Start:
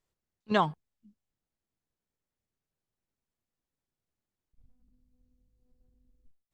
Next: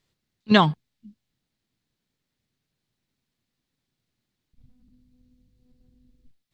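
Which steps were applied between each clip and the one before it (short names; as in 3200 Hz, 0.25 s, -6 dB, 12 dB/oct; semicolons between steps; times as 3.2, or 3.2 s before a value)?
graphic EQ 125/250/2000/4000 Hz +8/+7/+5/+10 dB; gain +4.5 dB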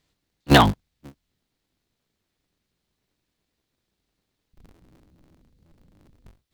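cycle switcher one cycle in 3, inverted; gain +2.5 dB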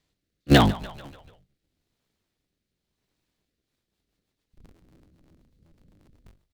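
frequency-shifting echo 0.146 s, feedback 62%, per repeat -46 Hz, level -21.5 dB; rotary speaker horn 0.85 Hz, later 8 Hz, at 3.36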